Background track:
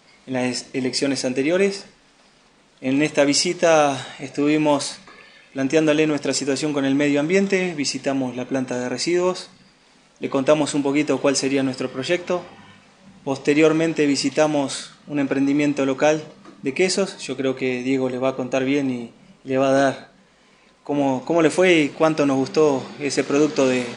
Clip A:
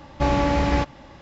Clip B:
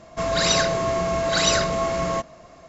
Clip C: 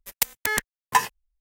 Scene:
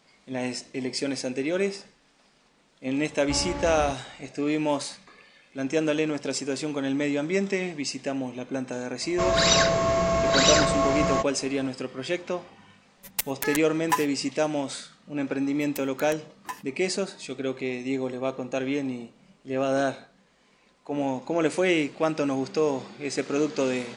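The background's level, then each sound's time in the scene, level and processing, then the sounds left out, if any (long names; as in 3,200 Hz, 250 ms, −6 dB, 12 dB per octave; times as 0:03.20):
background track −7.5 dB
0:03.09: mix in A −12 dB
0:09.01: mix in B
0:12.97: mix in C −6.5 dB + comb filter 7.2 ms, depth 74%
0:15.54: mix in C −16.5 dB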